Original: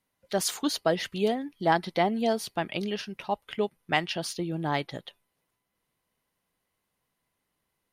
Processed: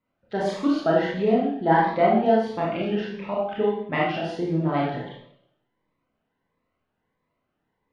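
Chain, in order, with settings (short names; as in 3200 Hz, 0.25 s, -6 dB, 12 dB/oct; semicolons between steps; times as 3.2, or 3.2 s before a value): LPF 1700 Hz 12 dB/oct; low shelf 120 Hz -5 dB; Schroeder reverb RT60 0.71 s, combs from 25 ms, DRR -5.5 dB; cascading phaser rising 1.5 Hz; gain +2.5 dB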